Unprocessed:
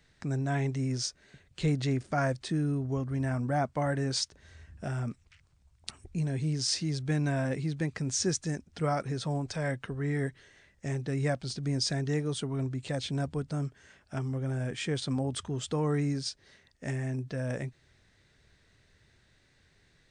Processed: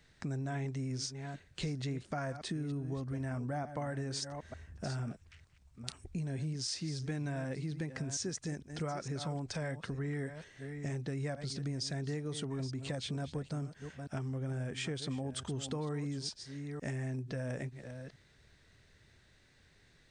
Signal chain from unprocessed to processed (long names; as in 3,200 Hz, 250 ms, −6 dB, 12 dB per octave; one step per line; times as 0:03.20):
delay that plays each chunk backwards 454 ms, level −13 dB
0:04.09–0:04.90: parametric band 4,200 Hz −4 dB 1.4 octaves
downward compressor, threshold −35 dBFS, peak gain reduction 11 dB